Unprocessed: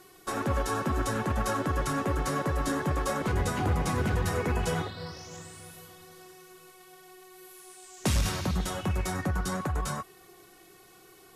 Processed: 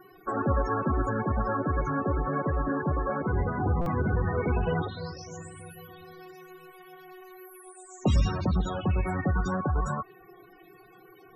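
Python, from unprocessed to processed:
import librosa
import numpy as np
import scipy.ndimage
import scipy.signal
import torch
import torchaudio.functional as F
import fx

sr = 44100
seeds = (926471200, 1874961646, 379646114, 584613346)

y = fx.spec_topn(x, sr, count=32)
y = fx.rider(y, sr, range_db=3, speed_s=2.0)
y = fx.buffer_glitch(y, sr, at_s=(3.81,), block=256, repeats=8)
y = F.gain(torch.from_numpy(y), 2.0).numpy()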